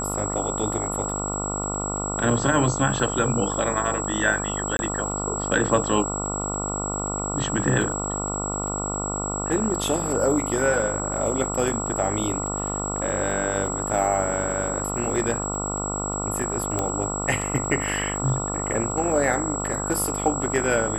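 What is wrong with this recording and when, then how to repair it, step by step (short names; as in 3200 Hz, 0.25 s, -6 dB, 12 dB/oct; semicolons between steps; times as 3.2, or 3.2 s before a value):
buzz 50 Hz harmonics 28 -30 dBFS
crackle 25/s -33 dBFS
tone 7700 Hz -29 dBFS
4.77–4.79 gap 21 ms
16.79 pop -11 dBFS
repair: de-click; de-hum 50 Hz, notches 28; notch 7700 Hz, Q 30; interpolate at 4.77, 21 ms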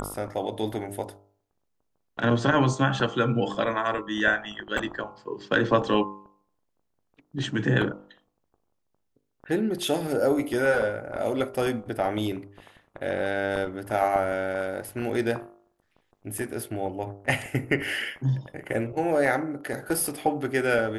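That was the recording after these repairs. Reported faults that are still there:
none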